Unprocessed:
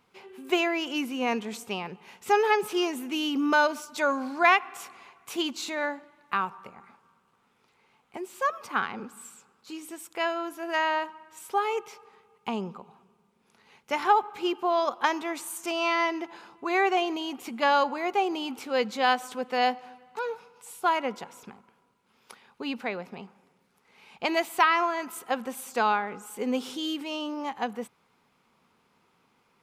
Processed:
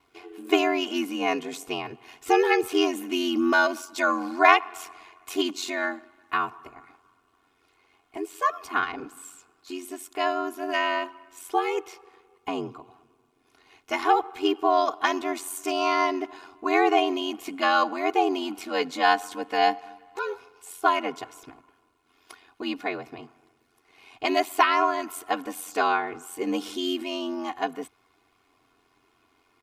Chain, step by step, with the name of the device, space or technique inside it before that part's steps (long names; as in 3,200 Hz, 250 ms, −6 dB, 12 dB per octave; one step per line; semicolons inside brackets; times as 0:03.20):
ring-modulated robot voice (ring modulation 45 Hz; comb filter 2.8 ms, depth 89%)
level +2.5 dB